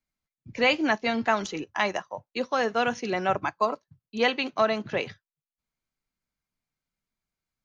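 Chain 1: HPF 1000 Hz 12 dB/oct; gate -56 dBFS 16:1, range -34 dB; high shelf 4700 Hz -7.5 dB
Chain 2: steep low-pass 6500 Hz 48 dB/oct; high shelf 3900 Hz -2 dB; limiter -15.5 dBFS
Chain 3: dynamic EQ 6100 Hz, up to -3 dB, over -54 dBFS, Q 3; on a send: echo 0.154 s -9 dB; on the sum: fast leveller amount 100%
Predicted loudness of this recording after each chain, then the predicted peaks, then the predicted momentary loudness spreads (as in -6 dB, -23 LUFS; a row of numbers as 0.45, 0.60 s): -31.0, -28.5, -19.5 LUFS; -12.0, -15.5, -4.5 dBFS; 13, 10, 3 LU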